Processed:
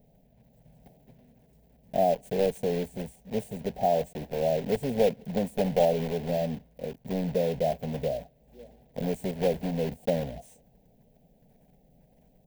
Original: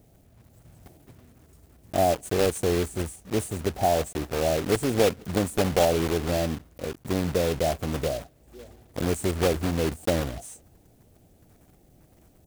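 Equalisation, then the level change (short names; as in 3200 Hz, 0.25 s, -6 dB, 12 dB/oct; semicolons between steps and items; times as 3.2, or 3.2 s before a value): bell 8500 Hz -15 dB 2.2 oct; fixed phaser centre 330 Hz, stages 6; 0.0 dB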